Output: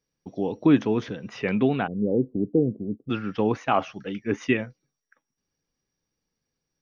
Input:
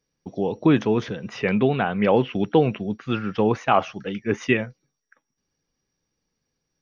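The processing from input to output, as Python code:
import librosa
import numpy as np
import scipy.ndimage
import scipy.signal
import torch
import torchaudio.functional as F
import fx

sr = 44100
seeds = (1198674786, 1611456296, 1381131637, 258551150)

y = fx.steep_lowpass(x, sr, hz=500.0, slope=36, at=(1.86, 3.09), fade=0.02)
y = fx.dynamic_eq(y, sr, hz=280.0, q=4.5, threshold_db=-41.0, ratio=4.0, max_db=7)
y = y * librosa.db_to_amplitude(-4.0)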